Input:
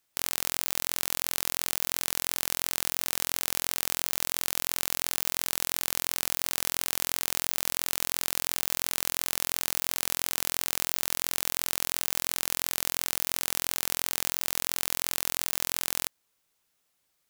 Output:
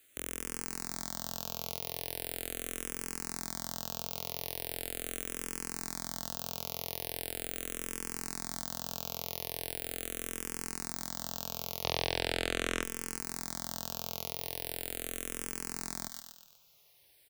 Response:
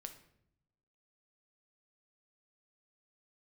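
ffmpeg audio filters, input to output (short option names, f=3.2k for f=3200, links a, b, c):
-filter_complex "[0:a]asettb=1/sr,asplit=3[a][b][c];[a]atrim=end=11.834[d];[b]atrim=start=11.83:end=12.83,asetpts=PTS-STARTPTS,afade=t=in:d=0.004:c=qsin,afade=t=out:st=0.996:d=0.004:c=qsin,lowpass=6k[e];[c]atrim=start=12.826[f];[d][e]acrossfade=d=0.004:c1=hsin:c2=qsin[g];[g][f]acrossfade=d=0.004:c1=qsin:c2=hsin,acontrast=52,asplit=2[h][i];[i]aecho=0:1:121|242|363|484:0.106|0.0519|0.0254|0.0125[j];[h][j]amix=inputs=2:normalize=0,acontrast=38,acrossover=split=840|1100[k][l][m];[l]acrusher=bits=5:mix=0:aa=0.000001[n];[m]alimiter=limit=-13.5dB:level=0:latency=1:release=66[o];[k][n][o]amix=inputs=3:normalize=0,asplit=2[p][q];[q]afreqshift=-0.4[r];[p][r]amix=inputs=2:normalize=1,volume=2dB"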